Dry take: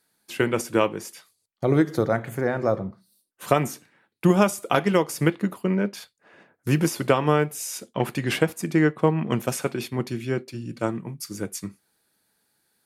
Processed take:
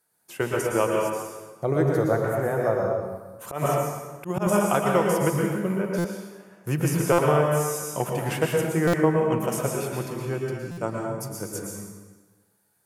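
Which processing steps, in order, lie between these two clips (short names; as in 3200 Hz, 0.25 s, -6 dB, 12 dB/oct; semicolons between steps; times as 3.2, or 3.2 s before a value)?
low shelf 69 Hz -7.5 dB; reverb RT60 1.3 s, pre-delay 0.102 s, DRR -1 dB; 3.48–4.47 auto swell 0.124 s; graphic EQ 250/2000/4000 Hz -9/-5/-10 dB; stuck buffer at 5.98/7.12/8.87/10.71, samples 256, times 10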